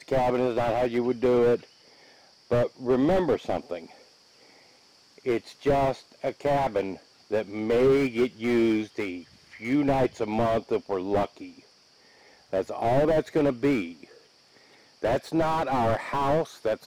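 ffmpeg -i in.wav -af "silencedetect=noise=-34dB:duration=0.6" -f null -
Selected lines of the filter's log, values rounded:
silence_start: 1.63
silence_end: 2.51 | silence_duration: 0.88
silence_start: 3.84
silence_end: 5.26 | silence_duration: 1.42
silence_start: 11.45
silence_end: 12.53 | silence_duration: 1.08
silence_start: 14.04
silence_end: 15.03 | silence_duration: 0.99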